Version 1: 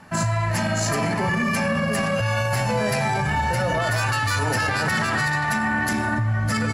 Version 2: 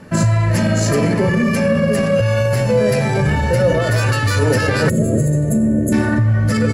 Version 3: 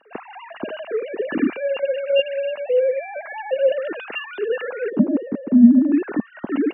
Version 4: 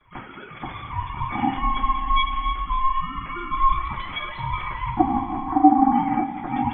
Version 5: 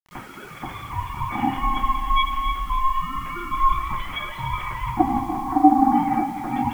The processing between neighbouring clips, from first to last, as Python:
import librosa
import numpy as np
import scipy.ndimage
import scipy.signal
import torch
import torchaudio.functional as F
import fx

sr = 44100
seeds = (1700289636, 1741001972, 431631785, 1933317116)

y1 = fx.spec_box(x, sr, start_s=4.89, length_s=1.04, low_hz=690.0, high_hz=6300.0, gain_db=-26)
y1 = fx.low_shelf_res(y1, sr, hz=630.0, db=6.0, q=3.0)
y1 = fx.rider(y1, sr, range_db=10, speed_s=0.5)
y1 = y1 * librosa.db_to_amplitude(2.5)
y2 = fx.sine_speech(y1, sr)
y2 = fx.small_body(y2, sr, hz=(220.0, 2800.0), ring_ms=25, db=16)
y2 = y2 * librosa.db_to_amplitude(-13.0)
y3 = fx.rev_double_slope(y2, sr, seeds[0], early_s=0.24, late_s=3.7, knee_db=-18, drr_db=-6.0)
y3 = y3 * np.sin(2.0 * np.pi * 530.0 * np.arange(len(y3)) / sr)
y3 = fx.spec_box(y3, sr, start_s=5.49, length_s=0.53, low_hz=870.0, high_hz=2000.0, gain_db=8)
y3 = y3 * librosa.db_to_amplitude(-5.5)
y4 = fx.quant_dither(y3, sr, seeds[1], bits=8, dither='none')
y4 = y4 + 10.0 ** (-12.0 / 20.0) * np.pad(y4, (int(292 * sr / 1000.0), 0))[:len(y4)]